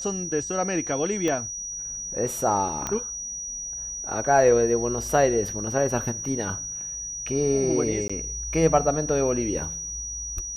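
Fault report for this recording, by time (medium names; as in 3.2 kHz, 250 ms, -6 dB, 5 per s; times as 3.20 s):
whine 5.8 kHz -31 dBFS
1.28 s: pop -14 dBFS
2.87 s: pop -13 dBFS
8.08–8.10 s: dropout 15 ms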